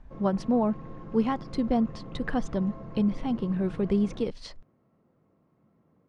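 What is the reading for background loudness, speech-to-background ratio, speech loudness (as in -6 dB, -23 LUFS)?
-43.0 LUFS, 14.5 dB, -28.5 LUFS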